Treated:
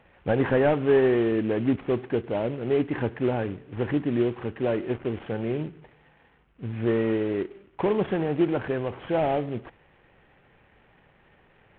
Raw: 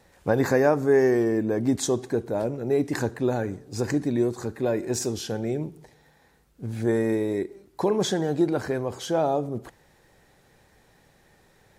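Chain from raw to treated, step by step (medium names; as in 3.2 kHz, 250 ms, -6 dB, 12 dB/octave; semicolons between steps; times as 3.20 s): CVSD coder 16 kbps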